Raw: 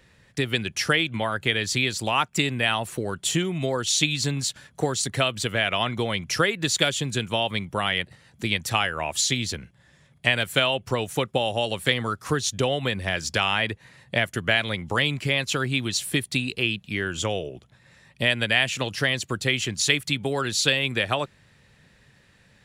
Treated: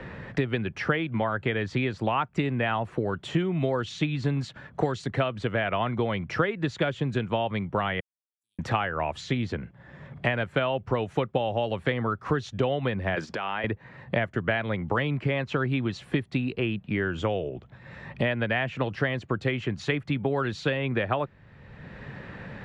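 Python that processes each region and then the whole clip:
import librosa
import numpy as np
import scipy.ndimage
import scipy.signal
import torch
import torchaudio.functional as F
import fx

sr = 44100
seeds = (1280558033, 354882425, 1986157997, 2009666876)

y = fx.chain(x, sr, fx.cheby2_highpass(hz=2200.0, order=4, stop_db=80),
    fx.level_steps(step_db=11), at=(8.0, 8.59))
y = fx.chain(y, sr, fx.highpass(hz=220.0, slope=12),
    fx.high_shelf(hz=3300.0, db=5.0),
    fx.over_compress(threshold_db=-30.0, ratio=-1.0), at=(13.15, 13.64))
y = scipy.signal.sosfilt(scipy.signal.butter(2, 1500.0, 'lowpass', fs=sr, output='sos'), y)
y = fx.band_squash(y, sr, depth_pct=70)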